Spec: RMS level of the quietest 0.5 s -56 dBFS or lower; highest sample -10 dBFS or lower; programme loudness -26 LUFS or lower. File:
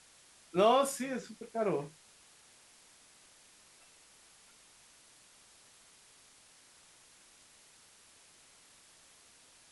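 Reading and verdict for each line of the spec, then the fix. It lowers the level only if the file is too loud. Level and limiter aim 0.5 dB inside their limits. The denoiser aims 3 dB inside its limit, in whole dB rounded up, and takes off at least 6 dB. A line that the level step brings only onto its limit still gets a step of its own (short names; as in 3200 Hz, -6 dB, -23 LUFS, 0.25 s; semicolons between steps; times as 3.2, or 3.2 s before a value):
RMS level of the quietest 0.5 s -61 dBFS: OK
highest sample -14.0 dBFS: OK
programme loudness -32.0 LUFS: OK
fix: none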